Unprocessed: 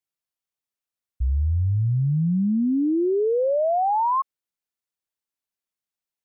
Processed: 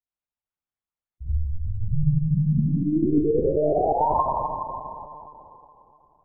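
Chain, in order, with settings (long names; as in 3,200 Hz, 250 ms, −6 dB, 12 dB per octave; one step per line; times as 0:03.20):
low-pass filter 1,100 Hz 6 dB per octave
low-shelf EQ 280 Hz −7 dB
convolution reverb RT60 3.0 s, pre-delay 4 ms, DRR −6.5 dB
one-pitch LPC vocoder at 8 kHz 150 Hz
level −4.5 dB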